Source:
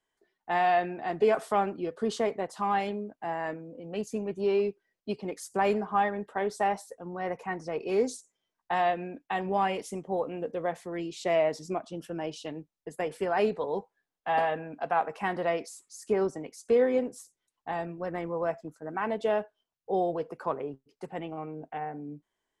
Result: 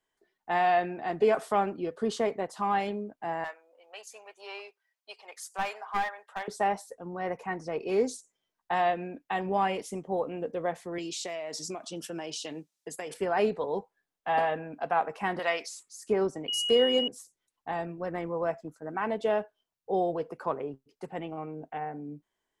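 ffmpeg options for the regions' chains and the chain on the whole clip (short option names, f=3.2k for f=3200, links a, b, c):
-filter_complex "[0:a]asettb=1/sr,asplit=3[a][b][c];[a]atrim=end=3.444[d];[b]atrim=start=3.44:end=6.48,asetpts=PTS-STARTPTS,afade=t=in:d=0.004:c=qsin,afade=t=out:st=3.036:d=0.004:c=qsin,highpass=f=750:w=0.5412,highpass=f=750:w=1.3066,aeval=exprs='clip(val(0),-1,0.0299)':c=same[e];[c]atrim=start=6.476[f];[d][e]acrossfade=d=0.004:c1=hsin:c2=qsin[g];[g][f]acrossfade=d=0.004:c1=qsin:c2=hsin,asettb=1/sr,asplit=3[h][i][j];[h]atrim=end=10.984[k];[i]atrim=start=10.98:end=13.14,asetpts=PTS-STARTPTS,afade=t=in:d=0.004:c=qsin,afade=t=out:st=2.156:d=0.004:c=qsin,highpass=160,equalizer=f=6.8k:t=o:w=2.5:g=13,acompressor=threshold=-32dB:ratio=16:attack=3.2:release=140:knee=1:detection=peak[l];[j]atrim=start=13.136[m];[k][l]acrossfade=d=0.004:c1=hsin:c2=qsin[n];[n][m]acrossfade=d=0.004:c1=qsin:c2=hsin,asettb=1/sr,asplit=3[o][p][q];[o]atrim=end=15.394[r];[p]atrim=start=15.39:end=15.83,asetpts=PTS-STARTPTS,afade=t=in:d=0.004:c=qsin,afade=t=out:st=0.436:d=0.004:c=qsin,highpass=f=210:p=1,tiltshelf=f=770:g=-9.5,acrossover=split=6500[s][t];[t]acompressor=threshold=-50dB:ratio=4:attack=1:release=60[u];[s][u]amix=inputs=2:normalize=0[v];[q]atrim=start=15.826[w];[r][v]acrossfade=d=0.004:c1=hsin:c2=qsin[x];[x][w]acrossfade=d=0.004:c1=qsin:c2=hsin,asettb=1/sr,asplit=3[y][z][aa];[y]atrim=end=16.484[ab];[z]atrim=start=16.48:end=17.08,asetpts=PTS-STARTPTS,afade=t=in:d=0.004:c=qsin,afade=t=out:st=0.596:d=0.004:c=qsin,bass=f=250:g=-2,treble=f=4k:g=13,bandreject=f=288:t=h:w=4,bandreject=f=576:t=h:w=4,bandreject=f=864:t=h:w=4,bandreject=f=1.152k:t=h:w=4,bandreject=f=1.44k:t=h:w=4,bandreject=f=1.728k:t=h:w=4,bandreject=f=2.016k:t=h:w=4,bandreject=f=2.304k:t=h:w=4,bandreject=f=2.592k:t=h:w=4,bandreject=f=2.88k:t=h:w=4,bandreject=f=3.168k:t=h:w=4,bandreject=f=3.456k:t=h:w=4,bandreject=f=3.744k:t=h:w=4,aeval=exprs='val(0)+0.0398*sin(2*PI*2900*n/s)':c=same[ac];[aa]atrim=start=17.076[ad];[ab][ac]acrossfade=d=0.004:c1=hsin:c2=qsin[ae];[ae][ad]acrossfade=d=0.004:c1=qsin:c2=hsin"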